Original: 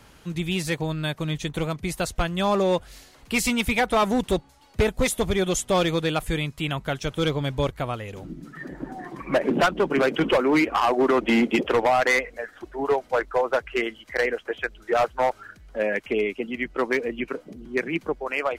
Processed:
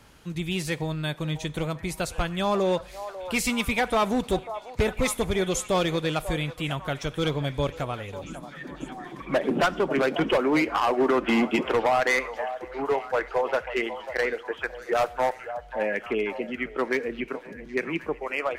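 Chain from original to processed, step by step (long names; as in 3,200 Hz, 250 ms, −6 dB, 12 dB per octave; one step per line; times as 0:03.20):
0:14.65–0:15.35: high-shelf EQ 6,600 Hz +7 dB
echo through a band-pass that steps 543 ms, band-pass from 740 Hz, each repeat 0.7 octaves, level −9 dB
on a send at −18 dB: convolution reverb, pre-delay 3 ms
on the sum: level −2.5 dB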